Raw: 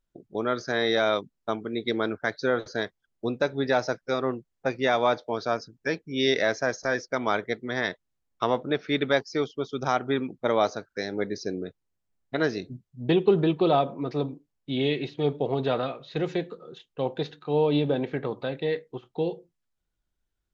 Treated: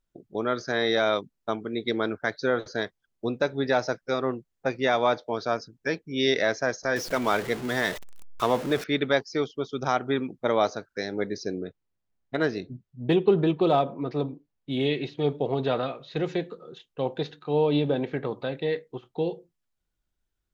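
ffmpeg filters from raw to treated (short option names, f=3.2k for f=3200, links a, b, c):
-filter_complex "[0:a]asettb=1/sr,asplit=3[a][b][c];[a]atrim=end=6.964[d];[b]atrim=start=6.96:end=8.84,asetpts=PTS-STARTPTS,afade=t=in:d=0.004:c=qsin,afade=t=out:st=1.876:d=0.004:c=qsin,aeval=exprs='val(0)+0.5*0.0266*sgn(val(0))':c=same[e];[c]atrim=start=8.836[f];[d][e]acrossfade=d=0.004:c1=hsin:c2=qsin[g];[g][f]acrossfade=d=0.004:c1=qsin:c2=hsin,asettb=1/sr,asplit=3[h][i][j];[h]atrim=end=11.584[k];[i]atrim=start=11.58:end=14.86,asetpts=PTS-STARTPTS,afade=t=in:d=0.004:c=qsin,afade=t=out:st=3.276:d=0.004:c=qsin,adynamicsmooth=sensitivity=1.5:basefreq=5.8k[l];[j]atrim=start=14.856[m];[k][l]acrossfade=d=0.004:c1=hsin:c2=qsin[n];[n][m]acrossfade=d=0.004:c1=qsin:c2=hsin"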